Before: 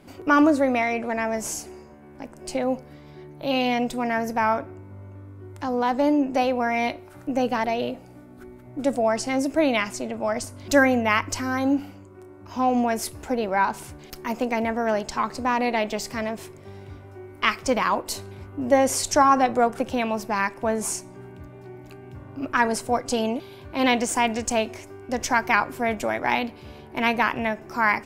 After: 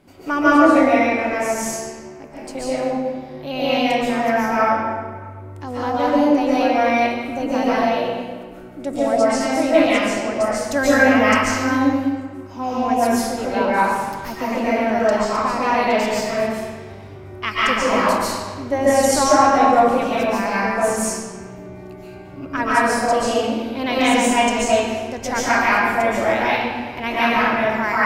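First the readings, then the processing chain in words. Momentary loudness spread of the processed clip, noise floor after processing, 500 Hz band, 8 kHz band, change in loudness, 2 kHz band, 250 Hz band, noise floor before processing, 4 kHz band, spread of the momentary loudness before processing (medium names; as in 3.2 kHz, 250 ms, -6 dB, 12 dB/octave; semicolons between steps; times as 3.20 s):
17 LU, -37 dBFS, +6.5 dB, +4.0 dB, +5.5 dB, +5.5 dB, +5.5 dB, -46 dBFS, +5.5 dB, 22 LU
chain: algorithmic reverb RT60 1.5 s, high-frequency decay 0.8×, pre-delay 100 ms, DRR -9.5 dB; trim -4 dB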